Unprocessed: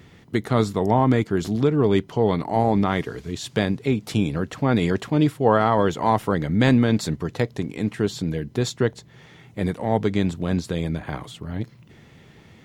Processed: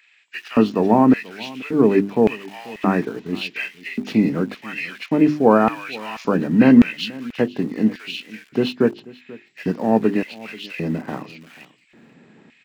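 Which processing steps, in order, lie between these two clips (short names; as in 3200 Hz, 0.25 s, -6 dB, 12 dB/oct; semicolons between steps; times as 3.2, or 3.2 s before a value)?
nonlinear frequency compression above 1400 Hz 1.5:1; notches 50/100/150/200/250/300/350/400 Hz; in parallel at -7.5 dB: sample gate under -32.5 dBFS; on the sum: LFO high-pass square 0.88 Hz 230–2400 Hz; on a send: echo 0.486 s -21 dB; on the sum: gain -1 dB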